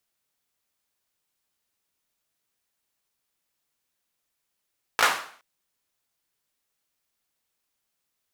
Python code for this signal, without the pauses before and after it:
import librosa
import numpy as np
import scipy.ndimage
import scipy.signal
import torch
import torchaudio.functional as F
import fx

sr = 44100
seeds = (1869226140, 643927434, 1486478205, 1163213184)

y = fx.drum_clap(sr, seeds[0], length_s=0.42, bursts=3, spacing_ms=18, hz=1200.0, decay_s=0.5)